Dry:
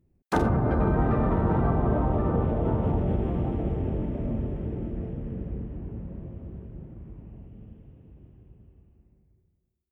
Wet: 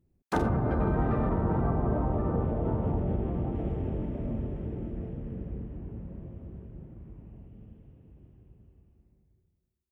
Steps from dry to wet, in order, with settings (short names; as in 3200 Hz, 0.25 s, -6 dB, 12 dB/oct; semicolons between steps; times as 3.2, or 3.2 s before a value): 1.29–3.55 high shelf 3300 Hz -11 dB; gain -3.5 dB